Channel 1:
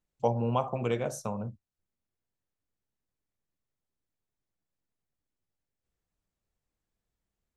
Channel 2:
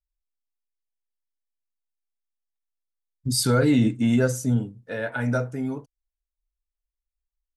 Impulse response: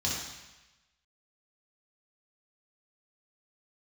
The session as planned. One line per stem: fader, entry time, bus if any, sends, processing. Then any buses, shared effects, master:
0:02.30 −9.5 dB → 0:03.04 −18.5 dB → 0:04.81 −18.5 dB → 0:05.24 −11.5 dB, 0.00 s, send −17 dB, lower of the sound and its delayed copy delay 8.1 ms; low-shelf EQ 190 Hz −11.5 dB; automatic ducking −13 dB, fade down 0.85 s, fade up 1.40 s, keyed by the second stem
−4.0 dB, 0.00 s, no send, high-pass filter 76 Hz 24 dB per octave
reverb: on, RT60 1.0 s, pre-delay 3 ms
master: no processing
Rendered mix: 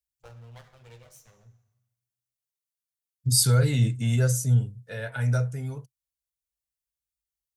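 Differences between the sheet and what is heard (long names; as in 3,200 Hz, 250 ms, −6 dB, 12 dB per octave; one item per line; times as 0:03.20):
stem 2 −4.0 dB → +4.5 dB
master: extra drawn EQ curve 130 Hz 0 dB, 280 Hz −21 dB, 430 Hz −11 dB, 880 Hz −13 dB, 10,000 Hz +1 dB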